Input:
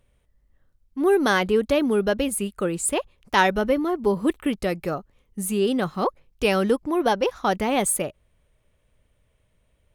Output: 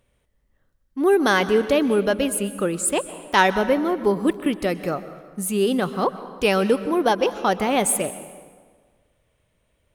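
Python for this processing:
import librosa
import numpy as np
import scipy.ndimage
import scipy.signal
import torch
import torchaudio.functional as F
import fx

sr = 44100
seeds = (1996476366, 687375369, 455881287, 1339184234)

y = fx.low_shelf(x, sr, hz=85.0, db=-8.5)
y = fx.rev_plate(y, sr, seeds[0], rt60_s=1.6, hf_ratio=0.7, predelay_ms=110, drr_db=13.0)
y = y * 10.0 ** (2.0 / 20.0)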